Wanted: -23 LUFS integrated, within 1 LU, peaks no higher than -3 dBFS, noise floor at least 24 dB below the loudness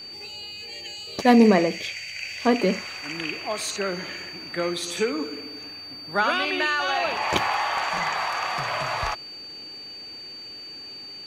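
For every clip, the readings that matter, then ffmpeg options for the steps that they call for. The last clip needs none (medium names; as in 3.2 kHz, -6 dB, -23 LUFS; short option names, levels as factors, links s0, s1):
steady tone 4.6 kHz; tone level -37 dBFS; loudness -24.5 LUFS; peak level -4.5 dBFS; loudness target -23.0 LUFS
-> -af "bandreject=f=4600:w=30"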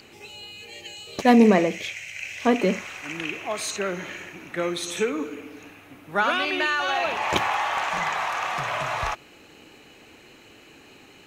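steady tone not found; loudness -24.0 LUFS; peak level -4.5 dBFS; loudness target -23.0 LUFS
-> -af "volume=1.12"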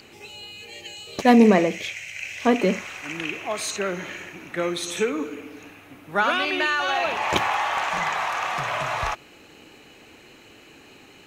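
loudness -23.0 LUFS; peak level -3.5 dBFS; noise floor -50 dBFS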